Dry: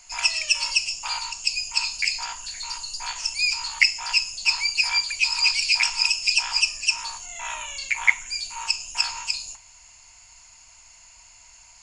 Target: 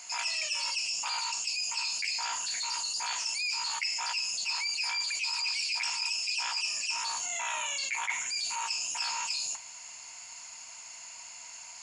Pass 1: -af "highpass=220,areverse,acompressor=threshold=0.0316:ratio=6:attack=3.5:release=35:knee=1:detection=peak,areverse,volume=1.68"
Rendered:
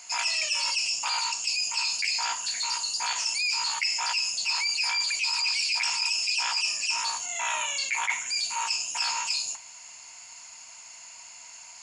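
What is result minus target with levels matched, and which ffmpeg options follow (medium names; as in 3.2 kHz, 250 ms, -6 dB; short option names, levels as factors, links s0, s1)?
compression: peak gain reduction -5 dB
-af "highpass=220,areverse,acompressor=threshold=0.0158:ratio=6:attack=3.5:release=35:knee=1:detection=peak,areverse,volume=1.68"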